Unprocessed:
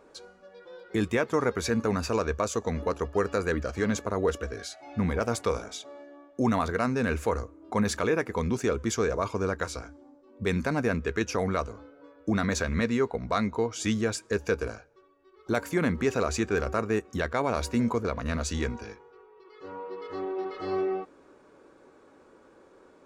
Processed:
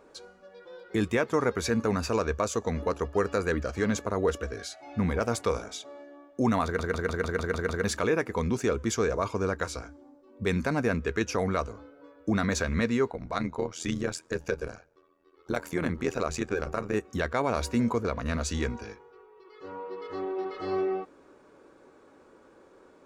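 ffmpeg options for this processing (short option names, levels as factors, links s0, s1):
-filter_complex "[0:a]asplit=3[s0][s1][s2];[s0]afade=t=out:st=13.11:d=0.02[s3];[s1]tremolo=f=83:d=0.824,afade=t=in:st=13.11:d=0.02,afade=t=out:st=16.94:d=0.02[s4];[s2]afade=t=in:st=16.94:d=0.02[s5];[s3][s4][s5]amix=inputs=3:normalize=0,asplit=9[s6][s7][s8][s9][s10][s11][s12][s13][s14];[s6]atrim=end=6.792[s15];[s7]atrim=start=6.638:end=6.792[s16];[s8]atrim=start=6.638:end=6.792[s17];[s9]atrim=start=6.638:end=6.792[s18];[s10]atrim=start=6.638:end=6.792[s19];[s11]atrim=start=6.638:end=6.792[s20];[s12]atrim=start=6.638:end=6.792[s21];[s13]atrim=start=6.638:end=6.792[s22];[s14]atrim=start=7.838[s23];[s15][s16]acrossfade=d=0.004:c1=hsin:c2=hsin[s24];[s24][s17]acrossfade=d=0.004:c1=hsin:c2=hsin[s25];[s25][s18]acrossfade=d=0.004:c1=hsin:c2=hsin[s26];[s26][s19]acrossfade=d=0.004:c1=hsin:c2=hsin[s27];[s27][s20]acrossfade=d=0.004:c1=hsin:c2=hsin[s28];[s28][s21]acrossfade=d=0.004:c1=hsin:c2=hsin[s29];[s29][s22]acrossfade=d=0.004:c1=hsin:c2=hsin[s30];[s30][s23]acrossfade=d=0.004:c1=hsin:c2=hsin"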